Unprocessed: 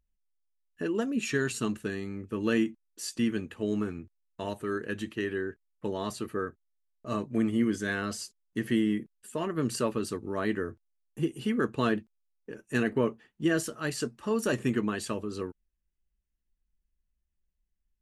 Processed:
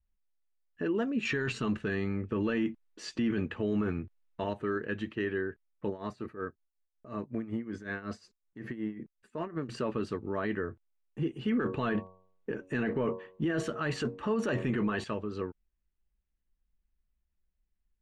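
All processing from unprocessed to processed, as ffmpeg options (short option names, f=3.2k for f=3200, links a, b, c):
-filter_complex "[0:a]asettb=1/sr,asplit=3[a][b][c];[a]atrim=end=1.254[d];[b]atrim=start=1.25:end=4.44,asetpts=PTS-STARTPTS,afade=t=in:d=0.004:c=qsin,afade=t=out:st=3.186:d=0.004:c=qsin,lowpass=9k,acontrast=53[e];[c]atrim=start=4.436[f];[d][e]acrossfade=d=0.004:c1=hsin:c2=qsin[g];[g][f]acrossfade=d=0.004:c1=qsin:c2=hsin,asettb=1/sr,asplit=3[h][i][j];[h]atrim=end=5.894[k];[i]atrim=start=5.89:end=9.69,asetpts=PTS-STARTPTS,afade=t=in:d=0.004:c=qsin,afade=t=out:st=3.796:d=0.004:c=qsin,equalizer=f=3.1k:t=o:w=0.27:g=-9,acompressor=threshold=-29dB:ratio=6:attack=3.2:release=140:knee=1:detection=peak,tremolo=f=5.4:d=0.78[l];[j]atrim=start=9.686[m];[k][l]acrossfade=d=0.004:c1=hsin:c2=qsin[n];[n][m]acrossfade=d=0.004:c1=qsin:c2=hsin,asettb=1/sr,asplit=3[o][p][q];[o]atrim=end=11.474[r];[p]atrim=start=11.47:end=15.04,asetpts=PTS-STARTPTS,afade=t=in:d=0.004:c=qsin,afade=t=out:st=3.566:d=0.004:c=qsin,bandreject=f=5k:w=7,bandreject=f=93.3:t=h:w=4,bandreject=f=186.6:t=h:w=4,bandreject=f=279.9:t=h:w=4,bandreject=f=373.2:t=h:w=4,bandreject=f=466.5:t=h:w=4,bandreject=f=559.8:t=h:w=4,bandreject=f=653.1:t=h:w=4,bandreject=f=746.4:t=h:w=4,bandreject=f=839.7:t=h:w=4,bandreject=f=933:t=h:w=4,bandreject=f=1.0263k:t=h:w=4,bandreject=f=1.1196k:t=h:w=4,acontrast=69[s];[q]atrim=start=15.036[t];[r][s]acrossfade=d=0.004:c1=hsin:c2=qsin[u];[u][t]acrossfade=d=0.004:c1=qsin:c2=hsin,lowpass=2.8k,adynamicequalizer=threshold=0.0126:dfrequency=290:dqfactor=1.3:tfrequency=290:tqfactor=1.3:attack=5:release=100:ratio=0.375:range=2.5:mode=cutabove:tftype=bell,alimiter=limit=-23.5dB:level=0:latency=1:release=12,volume=1dB"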